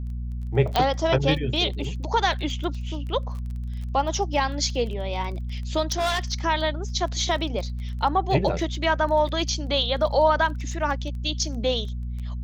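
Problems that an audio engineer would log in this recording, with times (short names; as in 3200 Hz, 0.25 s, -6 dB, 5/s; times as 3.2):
crackle 17/s -33 dBFS
hum 60 Hz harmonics 4 -30 dBFS
0.76 pop -8 dBFS
5.82–6.19 clipped -20 dBFS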